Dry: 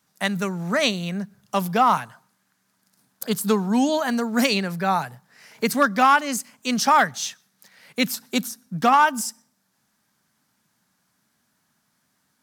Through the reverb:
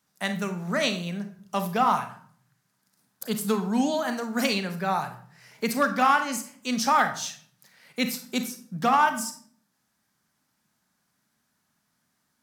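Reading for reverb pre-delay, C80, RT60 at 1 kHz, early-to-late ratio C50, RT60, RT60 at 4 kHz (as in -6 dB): 31 ms, 15.0 dB, 0.50 s, 10.5 dB, 0.55 s, 0.40 s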